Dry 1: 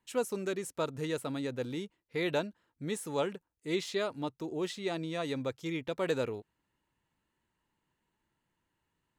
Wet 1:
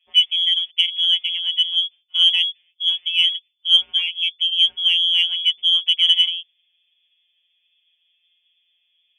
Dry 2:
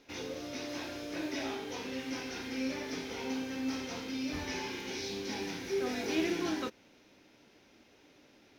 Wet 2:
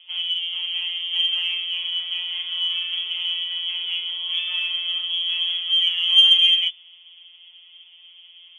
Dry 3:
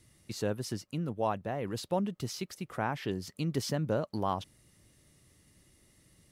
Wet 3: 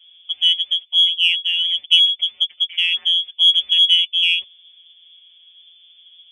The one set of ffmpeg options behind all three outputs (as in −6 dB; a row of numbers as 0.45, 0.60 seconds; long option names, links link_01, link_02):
-af "afftfilt=real='hypot(re,im)*cos(PI*b)':imag='0':win_size=1024:overlap=0.75,lowpass=frequency=3000:width_type=q:width=0.5098,lowpass=frequency=3000:width_type=q:width=0.6013,lowpass=frequency=3000:width_type=q:width=0.9,lowpass=frequency=3000:width_type=q:width=2.563,afreqshift=-3500,aexciter=amount=12.7:drive=7.4:freq=2400,volume=-3dB"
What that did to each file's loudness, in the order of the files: +19.0, +17.0, +20.0 LU